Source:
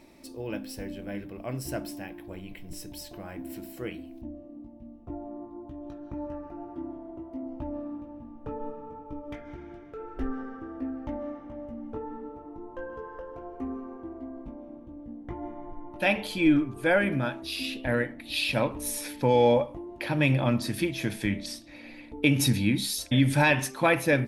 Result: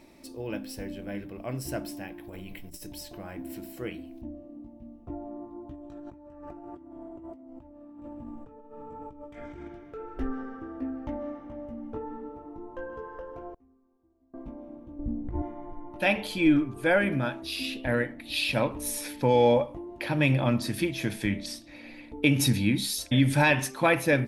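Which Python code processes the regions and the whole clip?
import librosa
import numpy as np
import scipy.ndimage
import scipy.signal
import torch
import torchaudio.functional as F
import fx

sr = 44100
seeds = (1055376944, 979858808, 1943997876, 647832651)

y = fx.chain(x, sr, fx.high_shelf(hz=11000.0, db=10.0),
    fx.hum_notches(base_hz=60, count=10),
    fx.over_compress(threshold_db=-41.0, ratio=-0.5), at=(2.23, 2.87))
y = fx.chain(y, sr, fx.peak_eq(hz=7700.0, db=13.0, octaves=0.22),
    fx.over_compress(threshold_db=-45.0, ratio=-1.0), at=(5.74, 9.68))
y = fx.chain(y, sr, fx.low_shelf(hz=200.0, db=10.5),
    fx.gate_flip(shuts_db=-39.0, range_db=-32), at=(13.54, 14.34))
y = fx.chain(y, sr, fx.riaa(side='playback'),
    fx.overload_stage(gain_db=16.5),
    fx.over_compress(threshold_db=-30.0, ratio=-1.0), at=(14.99, 15.42))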